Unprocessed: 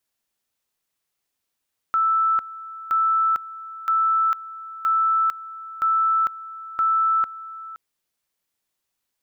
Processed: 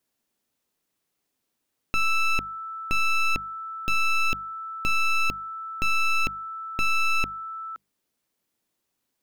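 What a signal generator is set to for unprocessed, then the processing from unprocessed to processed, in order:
two-level tone 1320 Hz -16.5 dBFS, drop 17 dB, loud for 0.45 s, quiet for 0.52 s, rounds 6
one-sided fold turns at -29.5 dBFS; bell 250 Hz +9.5 dB 2.3 oct; notches 50/100/150/200 Hz

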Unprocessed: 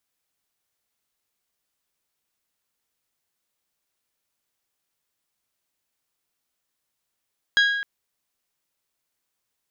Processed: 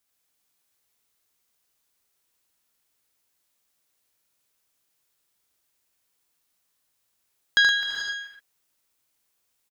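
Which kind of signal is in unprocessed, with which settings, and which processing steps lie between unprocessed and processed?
glass hit bell, length 0.26 s, lowest mode 1640 Hz, decay 1.16 s, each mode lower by 5.5 dB, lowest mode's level -14 dB
high shelf 5200 Hz +4 dB; on a send: tapped delay 77/120 ms -4/-6.5 dB; on the sum: non-linear reverb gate 0.46 s rising, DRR 6 dB

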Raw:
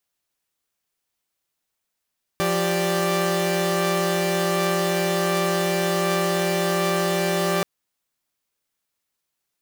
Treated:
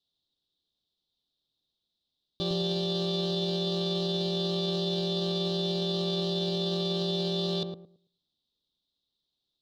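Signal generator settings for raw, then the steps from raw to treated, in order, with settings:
chord F3/G4/D5 saw, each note -22 dBFS 5.23 s
EQ curve 310 Hz 0 dB, 1100 Hz -13 dB, 2100 Hz -28 dB, 3700 Hz +12 dB, 6500 Hz -16 dB, 12000 Hz -29 dB; limiter -22 dBFS; on a send: darkening echo 0.11 s, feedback 26%, low-pass 820 Hz, level -4 dB

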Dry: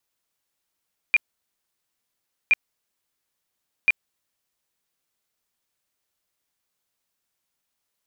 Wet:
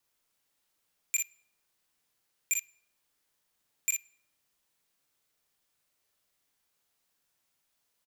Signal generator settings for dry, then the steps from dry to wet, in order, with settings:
tone bursts 2400 Hz, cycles 62, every 1.37 s, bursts 3, -12.5 dBFS
wavefolder -22 dBFS; tapped delay 43/57 ms -6/-5.5 dB; shoebox room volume 3200 m³, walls furnished, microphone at 0.38 m

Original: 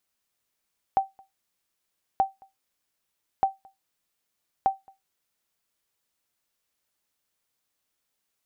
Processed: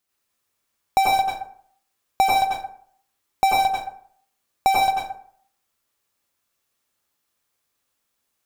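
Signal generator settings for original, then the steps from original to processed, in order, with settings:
sonar ping 776 Hz, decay 0.18 s, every 1.23 s, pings 4, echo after 0.22 s, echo -29.5 dB -13 dBFS
in parallel at -6.5 dB: fuzz box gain 54 dB, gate -53 dBFS; on the sum: plate-style reverb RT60 0.57 s, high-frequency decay 0.55×, pre-delay 80 ms, DRR -4 dB

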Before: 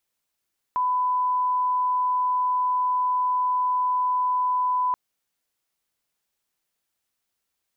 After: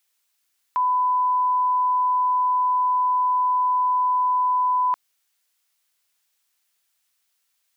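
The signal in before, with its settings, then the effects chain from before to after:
line-up tone -20 dBFS 4.18 s
tilt shelf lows -8.5 dB, about 710 Hz

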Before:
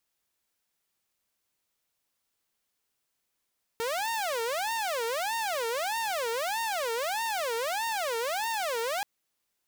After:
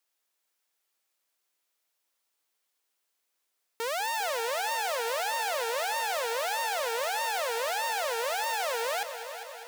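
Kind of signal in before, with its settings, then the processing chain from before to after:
siren wail 454–920 Hz 1.6/s saw -26 dBFS 5.23 s
HPF 370 Hz 12 dB/oct; on a send: multi-head echo 0.201 s, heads first and second, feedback 63%, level -13.5 dB

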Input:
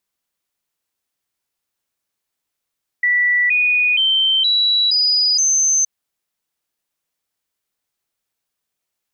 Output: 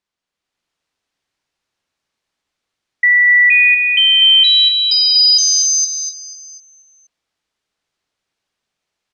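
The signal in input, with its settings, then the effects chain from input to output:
stepped sine 1960 Hz up, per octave 3, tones 6, 0.47 s, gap 0.00 s -12.5 dBFS
LPF 5300 Hz 12 dB/oct; on a send: feedback echo 0.244 s, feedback 45%, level -8 dB; on the sum: AGC gain up to 6 dB

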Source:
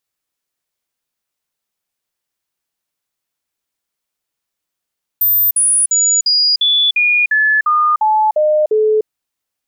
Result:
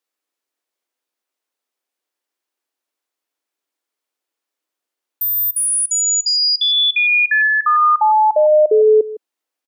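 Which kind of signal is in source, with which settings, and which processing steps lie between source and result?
stepped sine 13800 Hz down, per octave 2, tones 11, 0.30 s, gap 0.05 s -9.5 dBFS
steep high-pass 270 Hz; tilt -1.5 dB/oct; outdoor echo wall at 27 m, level -16 dB

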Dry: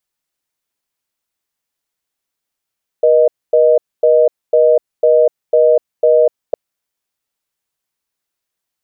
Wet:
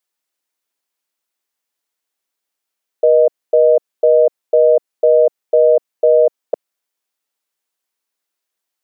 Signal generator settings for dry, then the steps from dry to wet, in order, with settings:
call progress tone reorder tone, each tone -9.5 dBFS 3.51 s
HPF 260 Hz 12 dB/oct

